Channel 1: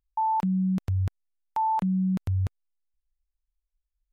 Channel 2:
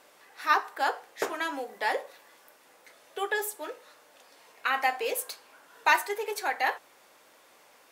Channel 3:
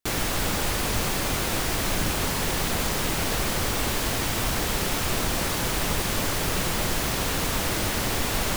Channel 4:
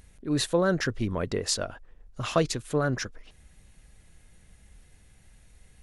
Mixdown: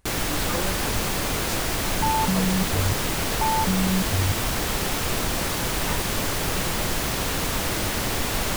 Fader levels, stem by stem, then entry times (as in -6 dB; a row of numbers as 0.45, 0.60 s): +1.0, -15.0, +0.5, -9.5 dB; 1.85, 0.00, 0.00, 0.00 s